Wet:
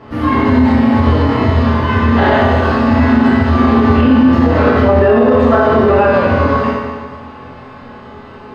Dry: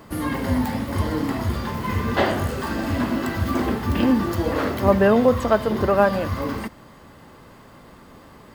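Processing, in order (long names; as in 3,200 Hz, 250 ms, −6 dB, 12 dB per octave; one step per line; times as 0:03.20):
high-frequency loss of the air 230 metres
convolution reverb RT60 1.6 s, pre-delay 5 ms, DRR −10 dB
boost into a limiter +5.5 dB
level −1 dB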